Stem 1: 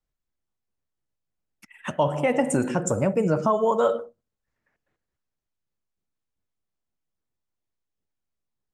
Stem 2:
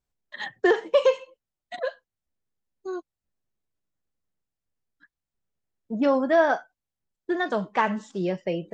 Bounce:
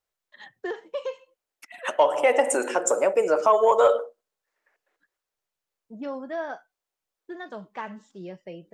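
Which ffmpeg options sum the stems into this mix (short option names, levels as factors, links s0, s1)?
-filter_complex "[0:a]highpass=f=410:w=0.5412,highpass=f=410:w=1.3066,acontrast=83,volume=0.75[s0];[1:a]volume=0.251[s1];[s0][s1]amix=inputs=2:normalize=0"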